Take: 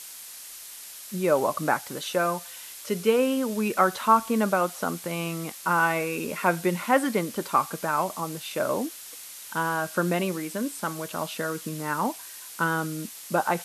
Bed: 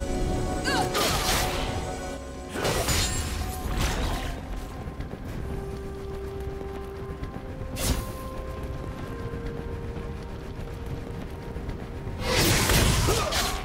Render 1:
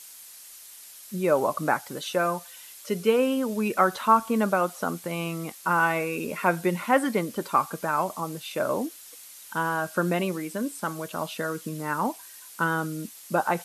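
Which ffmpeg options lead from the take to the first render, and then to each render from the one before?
-af "afftdn=nr=6:nf=-43"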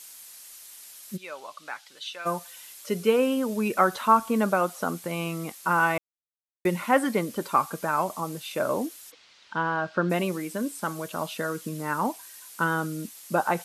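-filter_complex "[0:a]asplit=3[s0][s1][s2];[s0]afade=t=out:st=1.16:d=0.02[s3];[s1]bandpass=f=3400:t=q:w=1.5,afade=t=in:st=1.16:d=0.02,afade=t=out:st=2.25:d=0.02[s4];[s2]afade=t=in:st=2.25:d=0.02[s5];[s3][s4][s5]amix=inputs=3:normalize=0,asplit=3[s6][s7][s8];[s6]afade=t=out:st=9.1:d=0.02[s9];[s7]lowpass=f=4500:w=0.5412,lowpass=f=4500:w=1.3066,afade=t=in:st=9.1:d=0.02,afade=t=out:st=10.09:d=0.02[s10];[s8]afade=t=in:st=10.09:d=0.02[s11];[s9][s10][s11]amix=inputs=3:normalize=0,asplit=3[s12][s13][s14];[s12]atrim=end=5.98,asetpts=PTS-STARTPTS,afade=t=out:st=5.976:d=0.004:c=hsin[s15];[s13]atrim=start=5.98:end=6.65,asetpts=PTS-STARTPTS,volume=0[s16];[s14]atrim=start=6.65,asetpts=PTS-STARTPTS,afade=t=in:d=0.004:c=hsin[s17];[s15][s16][s17]concat=n=3:v=0:a=1"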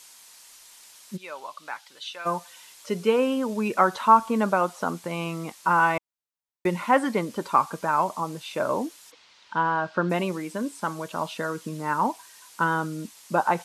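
-filter_complex "[0:a]acrossover=split=8800[s0][s1];[s1]acompressor=threshold=0.00112:ratio=4:attack=1:release=60[s2];[s0][s2]amix=inputs=2:normalize=0,equalizer=f=950:t=o:w=0.34:g=6.5"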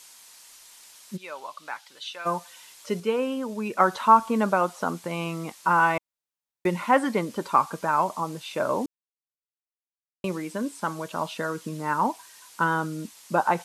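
-filter_complex "[0:a]asplit=5[s0][s1][s2][s3][s4];[s0]atrim=end=3.002[s5];[s1]atrim=start=2.998:end=3.802,asetpts=PTS-STARTPTS,volume=0.631[s6];[s2]atrim=start=3.798:end=8.86,asetpts=PTS-STARTPTS,afade=t=out:st=5.058:d=0.004:c=hsin[s7];[s3]atrim=start=8.86:end=10.24,asetpts=PTS-STARTPTS,volume=0[s8];[s4]atrim=start=10.24,asetpts=PTS-STARTPTS,afade=t=in:d=0.004:c=hsin[s9];[s5][s6]acrossfade=d=0.004:c1=hsin:c2=hsin[s10];[s7][s8][s9]concat=n=3:v=0:a=1[s11];[s10][s11]acrossfade=d=0.004:c1=hsin:c2=hsin"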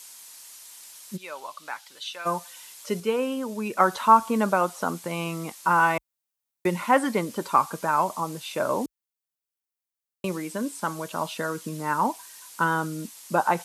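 -af "highpass=f=43:w=0.5412,highpass=f=43:w=1.3066,highshelf=f=7900:g=9"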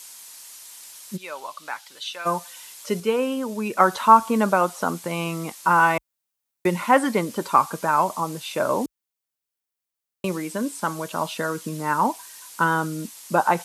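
-af "volume=1.41"

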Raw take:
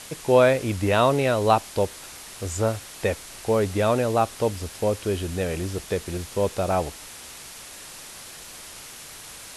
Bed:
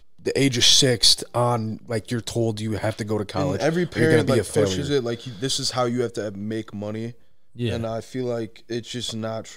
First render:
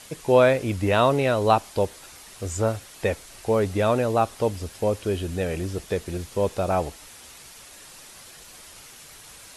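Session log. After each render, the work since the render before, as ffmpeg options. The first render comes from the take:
-af "afftdn=nr=6:nf=-42"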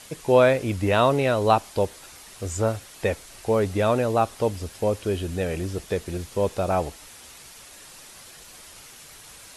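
-af anull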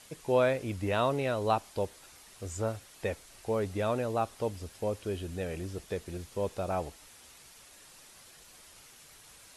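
-af "volume=0.355"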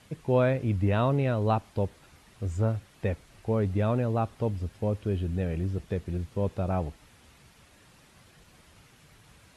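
-af "highpass=f=95:p=1,bass=f=250:g=14,treble=f=4000:g=-10"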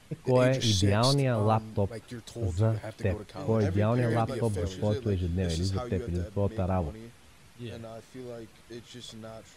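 -filter_complex "[1:a]volume=0.178[s0];[0:a][s0]amix=inputs=2:normalize=0"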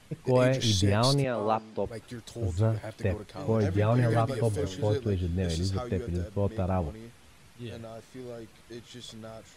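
-filter_complex "[0:a]asettb=1/sr,asplit=3[s0][s1][s2];[s0]atrim=end=1.244[s3];[s1]atrim=start=1.24:end=1.86,asetpts=PTS-STARTPTS,afade=t=in:d=0.004:c=qsin,afade=t=out:st=0.616:d=0.004:c=qsin,highpass=250,lowpass=7200[s4];[s2]atrim=start=1.856[s5];[s3][s4]acrossfade=d=0.004:c1=hsin:c2=qsin[s6];[s6][s5]acrossfade=d=0.004:c1=qsin:c2=hsin,asettb=1/sr,asplit=3[s7][s8][s9];[s7]atrim=end=3.744[s10];[s8]atrim=start=3.74:end=4.98,asetpts=PTS-STARTPTS,afade=t=in:d=0.004:c=qsin,afade=t=out:st=1.236:d=0.004:c=qsin,aecho=1:1:7.1:0.63,atrim=end_sample=54684[s11];[s9]atrim=start=4.976[s12];[s10][s11]acrossfade=d=0.004:c1=hsin:c2=qsin[s13];[s13][s12]acrossfade=d=0.004:c1=qsin:c2=hsin"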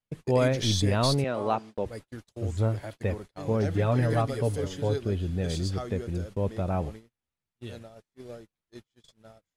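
-af "agate=range=0.0158:threshold=0.01:ratio=16:detection=peak"

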